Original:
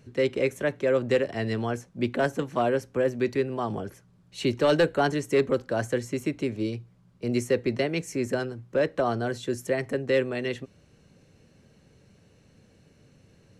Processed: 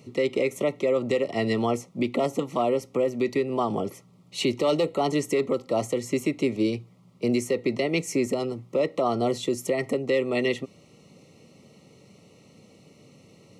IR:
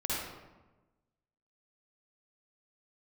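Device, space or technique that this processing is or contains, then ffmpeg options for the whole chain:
PA system with an anti-feedback notch: -af "highpass=160,asuperstop=centerf=1600:order=20:qfactor=3.3,alimiter=limit=-21.5dB:level=0:latency=1:release=193,volume=7dB"

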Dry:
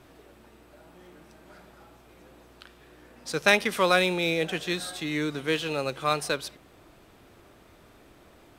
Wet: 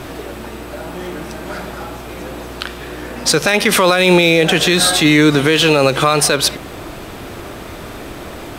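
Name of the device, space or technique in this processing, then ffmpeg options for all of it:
loud club master: -af "acompressor=threshold=-29dB:ratio=2,asoftclip=type=hard:threshold=-14.5dB,alimiter=level_in=25.5dB:limit=-1dB:release=50:level=0:latency=1,volume=-1dB"

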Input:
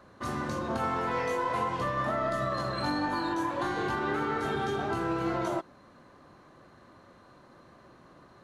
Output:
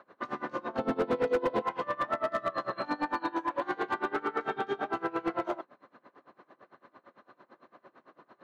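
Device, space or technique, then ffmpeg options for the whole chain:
helicopter radio: -filter_complex "[0:a]asettb=1/sr,asplit=3[a][b][c];[a]atrim=end=0.784[d];[b]atrim=start=0.78:end=1.62,asetpts=PTS-STARTPTS,afade=t=in:d=0.004:c=qsin,afade=t=out:st=0.836:d=0.004:c=qsin,equalizer=f=125:t=o:w=1:g=8,equalizer=f=250:t=o:w=1:g=11,equalizer=f=500:t=o:w=1:g=8,equalizer=f=1k:t=o:w=1:g=-5,equalizer=f=2k:t=o:w=1:g=-7,equalizer=f=4k:t=o:w=1:g=9,equalizer=f=8k:t=o:w=1:g=-10[e];[c]atrim=start=1.616[f];[d][e]acrossfade=d=0.004:c1=hsin:c2=qsin[g];[g][f]acrossfade=d=0.004:c1=qsin:c2=hsin,highpass=310,lowpass=2.7k,aeval=exprs='val(0)*pow(10,-24*(0.5-0.5*cos(2*PI*8.9*n/s))/20)':c=same,asoftclip=type=hard:threshold=-27dB,volume=5dB"

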